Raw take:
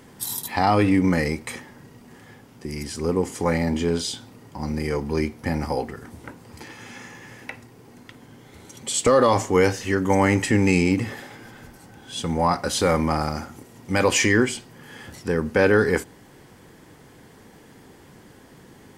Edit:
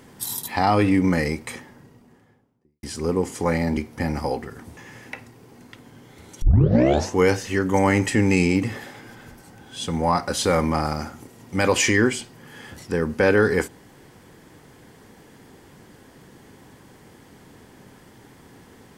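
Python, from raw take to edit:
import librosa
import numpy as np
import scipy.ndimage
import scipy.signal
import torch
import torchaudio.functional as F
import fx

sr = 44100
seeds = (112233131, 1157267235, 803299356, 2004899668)

y = fx.studio_fade_out(x, sr, start_s=1.35, length_s=1.48)
y = fx.edit(y, sr, fx.cut(start_s=3.77, length_s=1.46),
    fx.cut(start_s=6.23, length_s=0.9),
    fx.tape_start(start_s=8.78, length_s=0.75), tone=tone)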